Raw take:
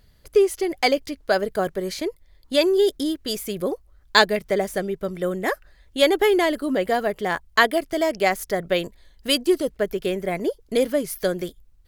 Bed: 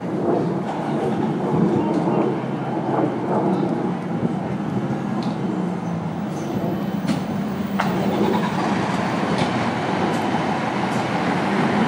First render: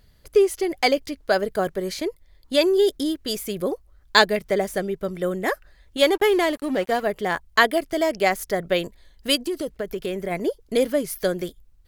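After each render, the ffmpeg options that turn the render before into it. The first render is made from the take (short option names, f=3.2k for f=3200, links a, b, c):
-filter_complex "[0:a]asettb=1/sr,asplit=3[a][b][c];[a]atrim=end=5.974[d];[b]atrim=start=5.97:end=7.03,asetpts=PTS-STARTPTS,afade=t=in:d=0.004:c=qsin,afade=t=out:st=1.056:d=0.004:c=qsin,aeval=exprs='sgn(val(0))*max(abs(val(0))-0.0141,0)':c=same[e];[c]atrim=start=7.026[f];[d][e]acrossfade=d=0.004:c1=hsin:c2=qsin[g];[g][f]acrossfade=d=0.004:c1=qsin:c2=hsin,asplit=3[h][i][j];[h]afade=t=out:st=9.35:d=0.02[k];[i]acompressor=threshold=-23dB:ratio=5:attack=3.2:release=140:knee=1:detection=peak,afade=t=in:st=9.35:d=0.02,afade=t=out:st=10.3:d=0.02[l];[j]afade=t=in:st=10.3:d=0.02[m];[k][l][m]amix=inputs=3:normalize=0"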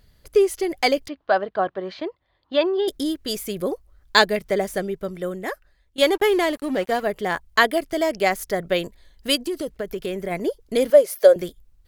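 -filter_complex "[0:a]asettb=1/sr,asplit=3[a][b][c];[a]atrim=end=1.084[d];[b]atrim=start=1.08:end=2.88,asetpts=PTS-STARTPTS,afade=t=in:d=0.004:c=qsin,afade=t=out:st=1.796:d=0.004:c=qsin,highpass=130,equalizer=f=160:t=q:w=4:g=-7,equalizer=f=230:t=q:w=4:g=-7,equalizer=f=430:t=q:w=4:g=-6,equalizer=f=760:t=q:w=4:g=5,equalizer=f=1.1k:t=q:w=4:g=6,equalizer=f=2.2k:t=q:w=4:g=-6,lowpass=f=3.5k:w=0.5412,lowpass=f=3.5k:w=1.3066[e];[c]atrim=start=2.876[f];[d][e]acrossfade=d=0.004:c1=hsin:c2=qsin[g];[g][f]acrossfade=d=0.004:c1=qsin:c2=hsin,asettb=1/sr,asplit=3[h][i][j];[h]atrim=end=10.904[k];[i]atrim=start=10.9:end=11.36,asetpts=PTS-STARTPTS,afade=t=in:d=0.004:c=qsin,afade=t=out:st=0.456:d=0.004:c=qsin,highpass=f=530:t=q:w=4.7[l];[j]atrim=start=11.356[m];[k][l]acrossfade=d=0.004:c1=hsin:c2=qsin[n];[n][m]acrossfade=d=0.004:c1=qsin:c2=hsin,asplit=2[o][p];[o]atrim=end=5.98,asetpts=PTS-STARTPTS,afade=t=out:st=4.82:d=1.16:silence=0.211349[q];[p]atrim=start=5.98,asetpts=PTS-STARTPTS,afade=t=in:d=0.004:c=hsin:silence=0.211349[r];[q][r]concat=n=2:v=0:a=1"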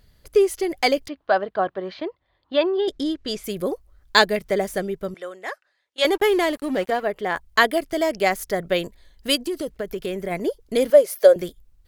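-filter_complex "[0:a]asettb=1/sr,asplit=3[a][b][c];[a]atrim=end=1.894[d];[b]atrim=start=1.89:end=3.44,asetpts=PTS-STARTPTS,afade=t=in:d=0.004:c=qsin,afade=t=out:st=1.546:d=0.004:c=qsin,lowpass=5.5k[e];[c]atrim=start=3.436[f];[d][e]acrossfade=d=0.004:c1=hsin:c2=qsin[g];[g][f]acrossfade=d=0.004:c1=qsin:c2=hsin,asettb=1/sr,asplit=3[h][i][j];[h]atrim=end=5.144[k];[i]atrim=start=5.14:end=6.05,asetpts=PTS-STARTPTS,afade=t=in:d=0.004:c=qsin,afade=t=out:st=0.906:d=0.004:c=qsin,highpass=640,lowpass=7.3k[l];[j]atrim=start=6.046[m];[k][l]acrossfade=d=0.004:c1=hsin:c2=qsin[n];[n][m]acrossfade=d=0.004:c1=qsin:c2=hsin,asettb=1/sr,asplit=3[o][p][q];[o]atrim=end=6.904[r];[p]atrim=start=6.9:end=7.36,asetpts=PTS-STARTPTS,afade=t=in:d=0.004:c=qsin,afade=t=out:st=0.456:d=0.004:c=qsin,bass=f=250:g=-6,treble=f=4k:g=-8[s];[q]atrim=start=7.356[t];[r][s]acrossfade=d=0.004:c1=hsin:c2=qsin[u];[u][t]acrossfade=d=0.004:c1=qsin:c2=hsin"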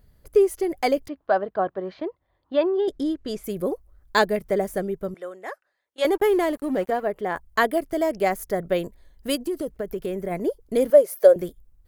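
-af "equalizer=f=3.8k:w=0.51:g=-10.5"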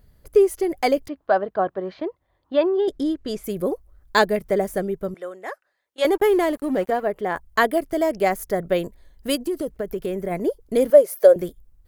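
-af "volume=2dB,alimiter=limit=-2dB:level=0:latency=1"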